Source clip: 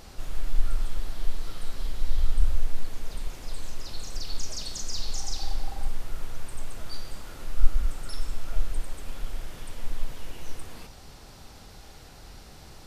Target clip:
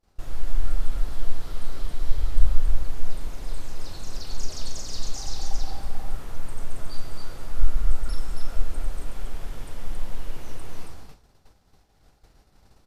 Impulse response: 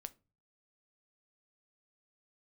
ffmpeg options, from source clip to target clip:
-filter_complex "[0:a]aecho=1:1:34.99|274.1:0.282|0.708,agate=range=-33dB:threshold=-33dB:ratio=3:detection=peak,asplit=2[link_01][link_02];[1:a]atrim=start_sample=2205,lowpass=2100[link_03];[link_02][link_03]afir=irnorm=-1:irlink=0,volume=0dB[link_04];[link_01][link_04]amix=inputs=2:normalize=0,volume=-3dB"

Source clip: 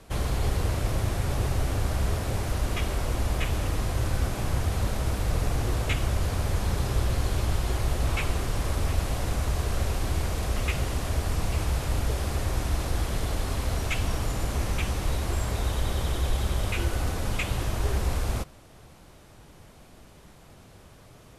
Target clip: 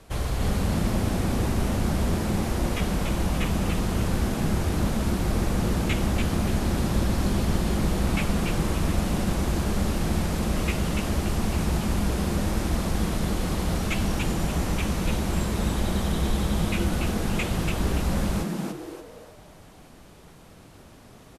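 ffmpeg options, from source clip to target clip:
ffmpeg -i in.wav -filter_complex "[0:a]asplit=6[link_01][link_02][link_03][link_04][link_05][link_06];[link_02]adelay=288,afreqshift=140,volume=-4dB[link_07];[link_03]adelay=576,afreqshift=280,volume=-12.6dB[link_08];[link_04]adelay=864,afreqshift=420,volume=-21.3dB[link_09];[link_05]adelay=1152,afreqshift=560,volume=-29.9dB[link_10];[link_06]adelay=1440,afreqshift=700,volume=-38.5dB[link_11];[link_01][link_07][link_08][link_09][link_10][link_11]amix=inputs=6:normalize=0" out.wav

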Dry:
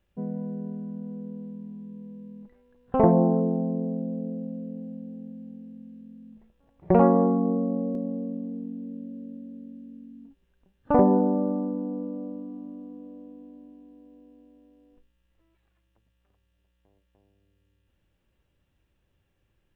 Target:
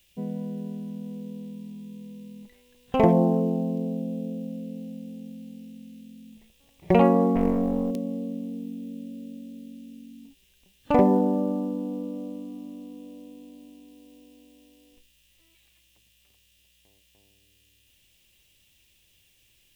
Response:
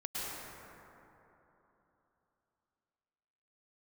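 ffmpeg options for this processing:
-filter_complex "[0:a]asettb=1/sr,asplit=3[link_01][link_02][link_03];[link_01]atrim=end=7.354[link_04];[link_02]atrim=start=7.35:end=7.91,asetpts=PTS-STARTPTS,afade=type=in:duration=0.004:curve=qsin,afade=type=out:start_time=0.556:duration=0.004:curve=qsin,aeval=exprs='0.188*(cos(1*acos(clip(val(0)/0.188,-1,1)))-cos(1*PI/2))+0.0841*(cos(2*acos(clip(val(0)/0.188,-1,1)))-cos(2*PI/2))+0.0119*(cos(5*acos(clip(val(0)/0.188,-1,1)))-cos(5*PI/2))':channel_layout=same[link_05];[link_03]atrim=start=7.906[link_06];[link_04][link_05]acrossfade=duration=0.004:curve1=hsin:curve2=qsin[link_07];[link_07][link_06]acrossfade=duration=0.004:curve1=qsin:curve2=hsin,aexciter=amount=11.9:drive=3.5:freq=2200"

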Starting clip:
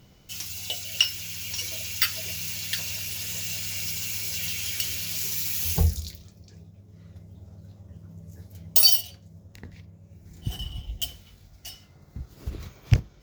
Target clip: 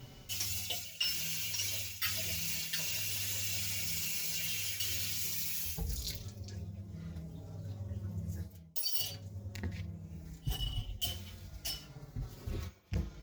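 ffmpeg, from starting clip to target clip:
ffmpeg -i in.wav -filter_complex "[0:a]areverse,acompressor=threshold=-36dB:ratio=10,areverse,asplit=2[link_01][link_02];[link_02]adelay=4.7,afreqshift=-0.66[link_03];[link_01][link_03]amix=inputs=2:normalize=1,volume=6.5dB" out.wav

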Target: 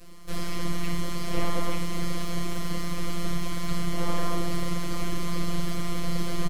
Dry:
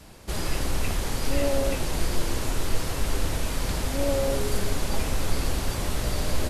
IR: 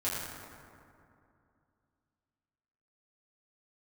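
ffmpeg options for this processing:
-filter_complex "[0:a]highpass=frequency=49:width=0.5412,highpass=frequency=49:width=1.3066,lowshelf=frequency=490:gain=7,acrossover=split=140|5300[link_01][link_02][link_03];[link_03]alimiter=level_in=12dB:limit=-24dB:level=0:latency=1,volume=-12dB[link_04];[link_01][link_02][link_04]amix=inputs=3:normalize=0,aeval=exprs='abs(val(0))':channel_layout=same,afftfilt=real='hypot(re,im)*cos(PI*b)':imag='0':win_size=1024:overlap=0.75,asuperstop=centerf=830:order=4:qfactor=6.3,aecho=1:1:30|59:0.224|0.398"

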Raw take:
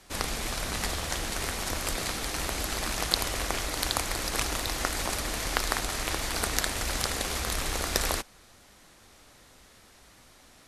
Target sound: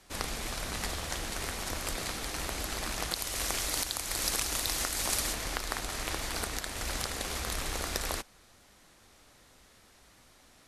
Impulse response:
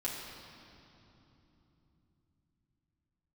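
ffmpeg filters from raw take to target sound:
-filter_complex "[0:a]asplit=3[link_01][link_02][link_03];[link_01]afade=type=out:start_time=3.13:duration=0.02[link_04];[link_02]highshelf=frequency=3500:gain=9.5,afade=type=in:start_time=3.13:duration=0.02,afade=type=out:start_time=5.32:duration=0.02[link_05];[link_03]afade=type=in:start_time=5.32:duration=0.02[link_06];[link_04][link_05][link_06]amix=inputs=3:normalize=0,alimiter=limit=-9dB:level=0:latency=1:release=277,volume=-4dB"

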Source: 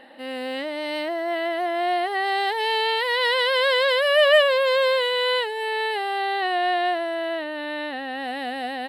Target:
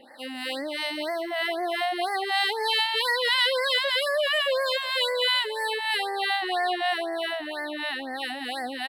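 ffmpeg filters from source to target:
ffmpeg -i in.wav -filter_complex "[0:a]acrossover=split=600[link_01][link_02];[link_01]aeval=exprs='val(0)*(1-0.7/2+0.7/2*cos(2*PI*3.1*n/s))':channel_layout=same[link_03];[link_02]aeval=exprs='val(0)*(1-0.7/2-0.7/2*cos(2*PI*3.1*n/s))':channel_layout=same[link_04];[link_03][link_04]amix=inputs=2:normalize=0,alimiter=limit=-19dB:level=0:latency=1:release=32,highshelf=frequency=2100:gain=9.5,asplit=4[link_05][link_06][link_07][link_08];[link_06]adelay=206,afreqshift=51,volume=-18dB[link_09];[link_07]adelay=412,afreqshift=102,volume=-26.9dB[link_10];[link_08]adelay=618,afreqshift=153,volume=-35.7dB[link_11];[link_05][link_09][link_10][link_11]amix=inputs=4:normalize=0,afftfilt=real='re*(1-between(b*sr/1024,380*pow(3100/380,0.5+0.5*sin(2*PI*2*pts/sr))/1.41,380*pow(3100/380,0.5+0.5*sin(2*PI*2*pts/sr))*1.41))':imag='im*(1-between(b*sr/1024,380*pow(3100/380,0.5+0.5*sin(2*PI*2*pts/sr))/1.41,380*pow(3100/380,0.5+0.5*sin(2*PI*2*pts/sr))*1.41))':win_size=1024:overlap=0.75" out.wav

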